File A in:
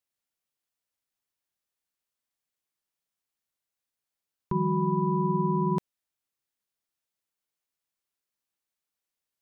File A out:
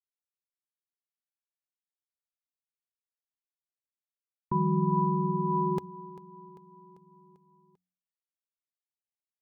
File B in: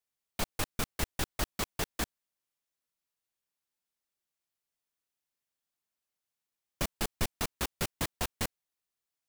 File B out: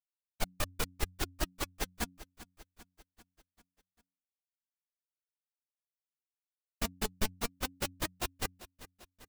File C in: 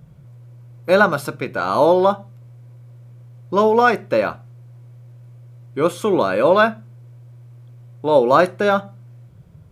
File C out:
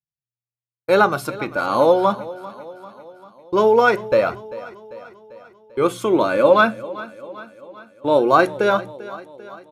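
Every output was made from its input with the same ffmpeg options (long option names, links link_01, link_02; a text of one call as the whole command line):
ffmpeg -i in.wav -filter_complex "[0:a]agate=range=-57dB:threshold=-32dB:ratio=16:detection=peak,flanger=delay=0.6:depth=4.2:regen=44:speed=0.21:shape=triangular,bandreject=frequency=90.96:width_type=h:width=4,bandreject=frequency=181.92:width_type=h:width=4,bandreject=frequency=272.88:width_type=h:width=4,asplit=2[link_01][link_02];[link_02]aecho=0:1:394|788|1182|1576|1970:0.133|0.076|0.0433|0.0247|0.0141[link_03];[link_01][link_03]amix=inputs=2:normalize=0,volume=3.5dB" out.wav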